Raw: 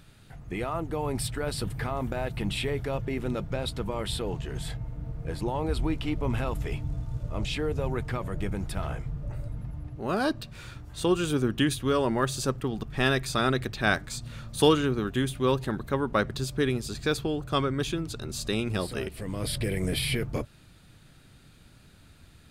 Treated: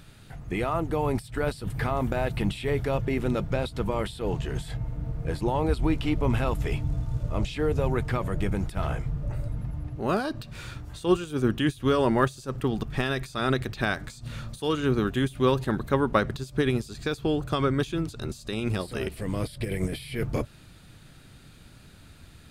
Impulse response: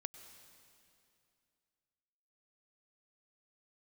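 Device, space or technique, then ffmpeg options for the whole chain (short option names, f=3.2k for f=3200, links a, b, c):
de-esser from a sidechain: -filter_complex "[0:a]asplit=2[a][b];[b]highpass=f=5.2k:w=0.5412,highpass=f=5.2k:w=1.3066,apad=whole_len=992319[c];[a][c]sidechaincompress=threshold=-49dB:ratio=16:attack=3.5:release=85,volume=4dB"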